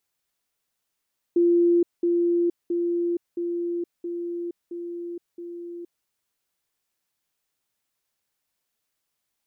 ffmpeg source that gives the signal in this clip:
ffmpeg -f lavfi -i "aevalsrc='pow(10,(-15.5-3*floor(t/0.67))/20)*sin(2*PI*345*t)*clip(min(mod(t,0.67),0.47-mod(t,0.67))/0.005,0,1)':duration=4.69:sample_rate=44100" out.wav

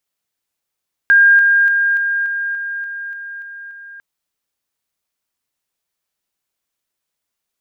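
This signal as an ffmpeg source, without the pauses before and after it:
ffmpeg -f lavfi -i "aevalsrc='pow(10,(-6-3*floor(t/0.29))/20)*sin(2*PI*1610*t)':duration=2.9:sample_rate=44100" out.wav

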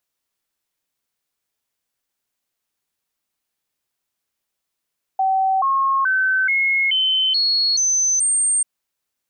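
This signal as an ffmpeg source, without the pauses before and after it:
ffmpeg -f lavfi -i "aevalsrc='0.178*clip(min(mod(t,0.43),0.43-mod(t,0.43))/0.005,0,1)*sin(2*PI*766*pow(2,floor(t/0.43)/2)*mod(t,0.43))':duration=3.44:sample_rate=44100" out.wav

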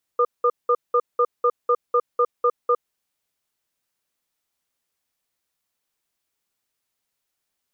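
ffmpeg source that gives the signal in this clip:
ffmpeg -f lavfi -i "aevalsrc='0.133*(sin(2*PI*484*t)+sin(2*PI*1210*t))*clip(min(mod(t,0.25),0.06-mod(t,0.25))/0.005,0,1)':duration=2.6:sample_rate=44100" out.wav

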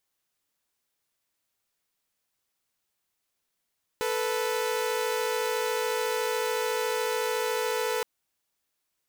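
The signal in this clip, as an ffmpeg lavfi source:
ffmpeg -f lavfi -i "aevalsrc='0.0473*((2*mod(440*t,1)-1)+(2*mod(493.88*t,1)-1))':duration=4.02:sample_rate=44100" out.wav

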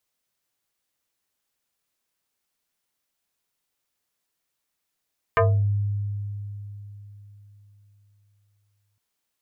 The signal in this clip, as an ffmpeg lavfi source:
ffmpeg -f lavfi -i "aevalsrc='0.188*pow(10,-3*t/3.87)*sin(2*PI*102*t+3.4*pow(10,-3*t/0.34)*sin(2*PI*5.52*102*t))':duration=3.61:sample_rate=44100" out.wav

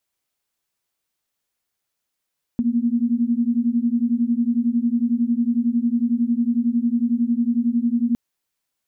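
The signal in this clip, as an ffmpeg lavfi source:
ffmpeg -f lavfi -i "aevalsrc='0.1*(sin(2*PI*231*t)+sin(2*PI*242*t))':duration=5.56:sample_rate=44100" out.wav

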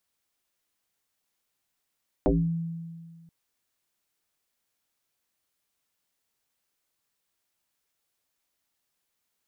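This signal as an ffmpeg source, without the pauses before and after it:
ffmpeg -f lavfi -i "aevalsrc='0.141*pow(10,-3*t/1.84)*sin(2*PI*166*t+5.5*pow(10,-3*t/0.37)*sin(2*PI*0.68*166*t))':duration=1.03:sample_rate=44100" out.wav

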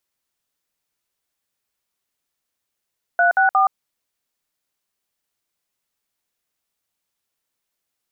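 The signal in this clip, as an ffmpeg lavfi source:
ffmpeg -f lavfi -i "aevalsrc='0.178*clip(min(mod(t,0.179),0.122-mod(t,0.179))/0.002,0,1)*(eq(floor(t/0.179),0)*(sin(2*PI*697*mod(t,0.179))+sin(2*PI*1477*mod(t,0.179)))+eq(floor(t/0.179),1)*(sin(2*PI*770*mod(t,0.179))+sin(2*PI*1477*mod(t,0.179)))+eq(floor(t/0.179),2)*(sin(2*PI*770*mod(t,0.179))+sin(2*PI*1209*mod(t,0.179))))':duration=0.537:sample_rate=44100" out.wav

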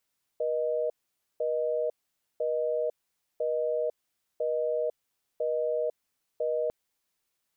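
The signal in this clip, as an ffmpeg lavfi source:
ffmpeg -f lavfi -i "aevalsrc='0.0376*(sin(2*PI*480*t)+sin(2*PI*620*t))*clip(min(mod(t,1),0.5-mod(t,1))/0.005,0,1)':duration=6.3:sample_rate=44100" out.wav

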